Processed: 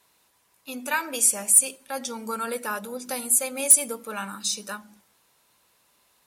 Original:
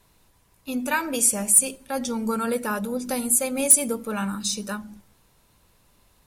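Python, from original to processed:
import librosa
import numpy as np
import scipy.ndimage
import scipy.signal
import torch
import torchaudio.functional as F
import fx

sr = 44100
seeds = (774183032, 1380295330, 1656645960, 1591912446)

y = fx.highpass(x, sr, hz=710.0, slope=6)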